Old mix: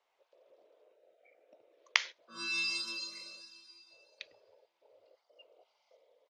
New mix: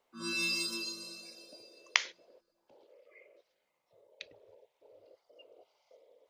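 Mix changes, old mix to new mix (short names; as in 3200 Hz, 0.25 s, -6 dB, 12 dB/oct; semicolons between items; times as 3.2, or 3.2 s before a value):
background: entry -2.15 s; master: remove three-band isolator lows -13 dB, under 570 Hz, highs -21 dB, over 7100 Hz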